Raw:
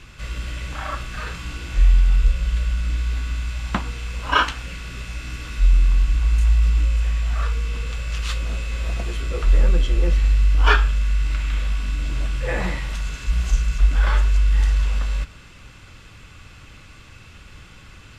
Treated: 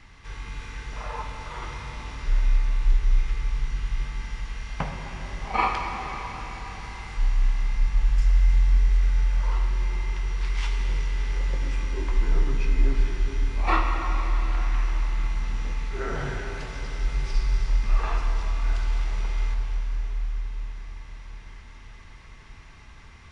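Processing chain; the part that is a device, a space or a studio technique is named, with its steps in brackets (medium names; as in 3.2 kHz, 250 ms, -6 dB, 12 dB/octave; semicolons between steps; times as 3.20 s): slowed and reverbed (tape speed -22%; reverberation RT60 4.8 s, pre-delay 47 ms, DRR 2.5 dB); trim -6.5 dB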